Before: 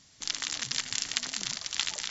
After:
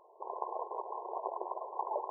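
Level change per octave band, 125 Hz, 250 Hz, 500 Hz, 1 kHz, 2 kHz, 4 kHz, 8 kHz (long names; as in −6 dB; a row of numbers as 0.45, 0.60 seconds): below −40 dB, −4.5 dB, +15.0 dB, +11.0 dB, below −40 dB, below −40 dB, can't be measured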